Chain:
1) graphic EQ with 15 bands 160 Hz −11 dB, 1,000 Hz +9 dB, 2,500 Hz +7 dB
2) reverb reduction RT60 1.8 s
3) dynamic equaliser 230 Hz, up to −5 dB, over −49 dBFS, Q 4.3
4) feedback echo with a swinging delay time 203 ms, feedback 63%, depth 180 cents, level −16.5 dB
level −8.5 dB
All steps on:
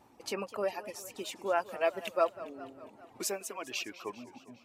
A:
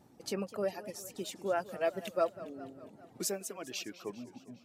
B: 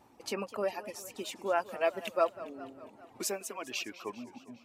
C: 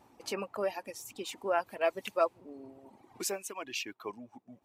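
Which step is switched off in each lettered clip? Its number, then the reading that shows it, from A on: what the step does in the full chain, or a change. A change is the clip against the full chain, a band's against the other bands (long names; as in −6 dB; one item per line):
1, 250 Hz band +5.0 dB
3, change in momentary loudness spread −1 LU
4, change in momentary loudness spread +2 LU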